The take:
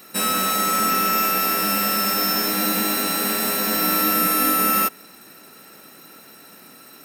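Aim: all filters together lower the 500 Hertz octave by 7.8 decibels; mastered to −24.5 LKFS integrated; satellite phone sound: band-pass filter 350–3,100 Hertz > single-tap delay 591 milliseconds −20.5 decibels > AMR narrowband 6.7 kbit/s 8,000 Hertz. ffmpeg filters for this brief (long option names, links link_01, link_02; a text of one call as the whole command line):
ffmpeg -i in.wav -af "highpass=350,lowpass=3100,equalizer=frequency=500:width_type=o:gain=-8.5,aecho=1:1:591:0.0944,volume=2dB" -ar 8000 -c:a libopencore_amrnb -b:a 6700 out.amr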